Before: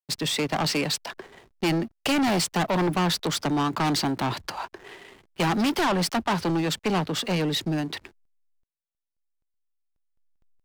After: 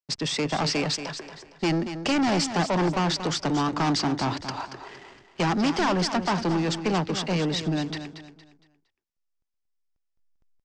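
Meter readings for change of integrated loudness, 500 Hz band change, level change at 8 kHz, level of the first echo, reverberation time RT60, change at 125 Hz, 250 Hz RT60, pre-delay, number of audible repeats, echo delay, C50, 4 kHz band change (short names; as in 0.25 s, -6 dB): -0.5 dB, 0.0 dB, -1.5 dB, -10.0 dB, none, +0.5 dB, none, none, 3, 0.231 s, none, -1.0 dB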